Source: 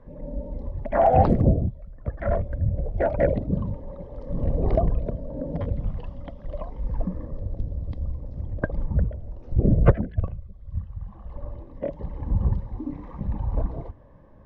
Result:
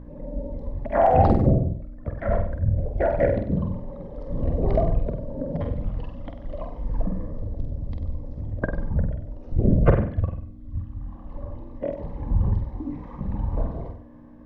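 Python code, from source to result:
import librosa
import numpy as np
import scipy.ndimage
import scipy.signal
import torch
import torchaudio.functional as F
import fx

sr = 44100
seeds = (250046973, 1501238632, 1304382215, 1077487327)

y = fx.room_flutter(x, sr, wall_m=8.2, rt60_s=0.51)
y = fx.add_hum(y, sr, base_hz=60, snr_db=14)
y = fx.hum_notches(y, sr, base_hz=60, count=3)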